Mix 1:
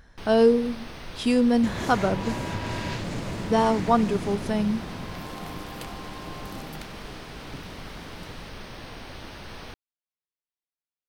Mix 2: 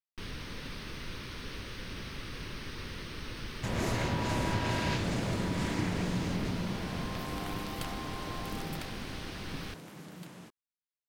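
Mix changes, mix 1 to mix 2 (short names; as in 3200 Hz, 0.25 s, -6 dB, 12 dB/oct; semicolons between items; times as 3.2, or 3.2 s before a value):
speech: muted; first sound: add bell 730 Hz -13 dB 0.75 oct; second sound: entry +2.00 s; reverb: off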